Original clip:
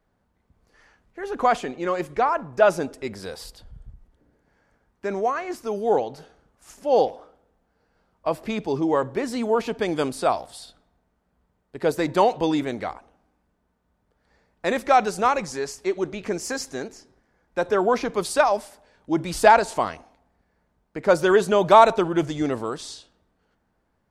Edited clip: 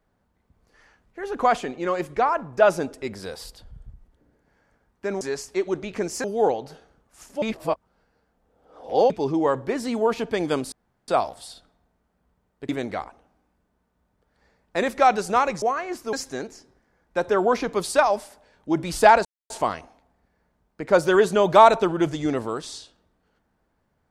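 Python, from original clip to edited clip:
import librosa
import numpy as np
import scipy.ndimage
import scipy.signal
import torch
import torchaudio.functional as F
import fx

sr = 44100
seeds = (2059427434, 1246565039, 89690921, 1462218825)

y = fx.edit(x, sr, fx.swap(start_s=5.21, length_s=0.51, other_s=15.51, other_length_s=1.03),
    fx.reverse_span(start_s=6.9, length_s=1.68),
    fx.insert_room_tone(at_s=10.2, length_s=0.36),
    fx.cut(start_s=11.81, length_s=0.77),
    fx.insert_silence(at_s=19.66, length_s=0.25), tone=tone)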